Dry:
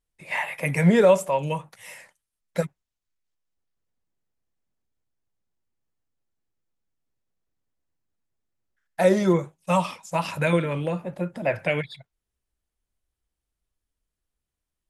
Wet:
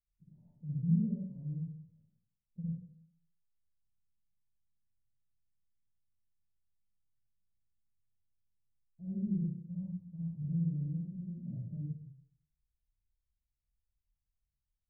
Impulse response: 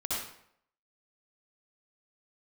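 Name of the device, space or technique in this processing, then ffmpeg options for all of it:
club heard from the street: -filter_complex "[0:a]alimiter=limit=-14dB:level=0:latency=1,lowpass=f=180:w=0.5412,lowpass=f=180:w=1.3066[a];[1:a]atrim=start_sample=2205[b];[a][b]afir=irnorm=-1:irlink=0,volume=-8dB"

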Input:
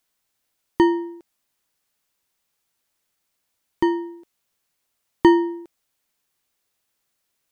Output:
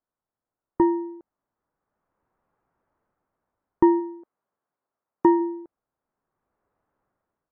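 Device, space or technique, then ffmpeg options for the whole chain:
action camera in a waterproof case: -filter_complex "[0:a]asplit=3[a][b][c];[a]afade=t=out:st=3.99:d=0.02[d];[b]highpass=f=290:p=1,afade=t=in:st=3.99:d=0.02,afade=t=out:st=5.39:d=0.02[e];[c]afade=t=in:st=5.39:d=0.02[f];[d][e][f]amix=inputs=3:normalize=0,lowpass=f=1.3k:w=0.5412,lowpass=f=1.3k:w=1.3066,dynaudnorm=f=370:g=5:m=16.5dB,volume=-5.5dB" -ar 48000 -c:a aac -b:a 48k

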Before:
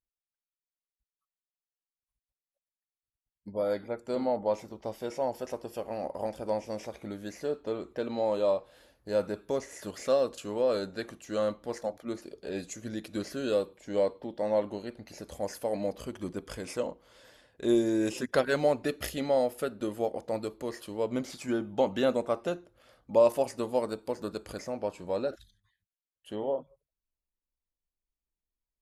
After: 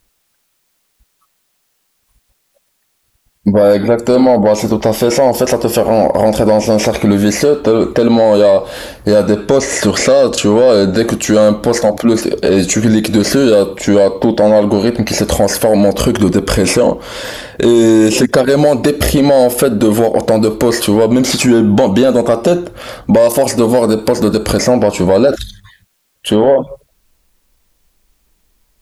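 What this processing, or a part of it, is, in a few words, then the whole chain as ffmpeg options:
mastering chain: -filter_complex "[0:a]equalizer=f=210:t=o:w=0.21:g=3,acrossover=split=950|3700[a][b][c];[a]acompressor=threshold=-30dB:ratio=4[d];[b]acompressor=threshold=-51dB:ratio=4[e];[c]acompressor=threshold=-48dB:ratio=4[f];[d][e][f]amix=inputs=3:normalize=0,acompressor=threshold=-36dB:ratio=2,asoftclip=type=tanh:threshold=-29dB,alimiter=level_in=34dB:limit=-1dB:release=50:level=0:latency=1,asettb=1/sr,asplit=3[g][h][i];[g]atrim=end=9.244[j];[h]atrim=start=9.24:end=10.96,asetpts=PTS-STARTPTS,afade=t=in:d=0.004:c=qsin,afade=t=out:st=1.716:d=0.004:c=qsin,lowpass=8.9k[k];[i]atrim=start=10.956[l];[j][k]acrossfade=d=0.004:c1=hsin:c2=qsin[m];[m][l]acrossfade=d=0.004:c1=qsin:c2=hsin,volume=-1dB"

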